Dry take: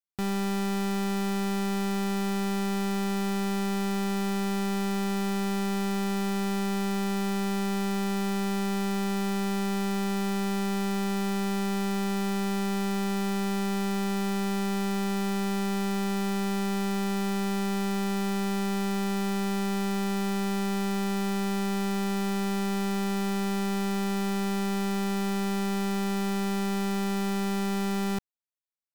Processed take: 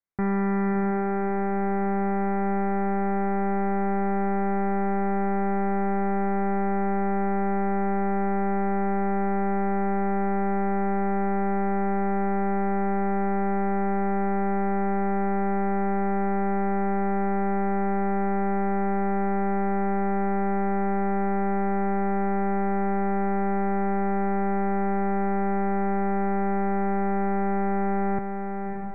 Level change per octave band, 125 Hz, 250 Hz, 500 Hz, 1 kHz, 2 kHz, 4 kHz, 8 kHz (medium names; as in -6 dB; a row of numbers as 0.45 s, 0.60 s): no reading, +1.5 dB, +5.5 dB, +8.0 dB, +1.0 dB, under -40 dB, under -40 dB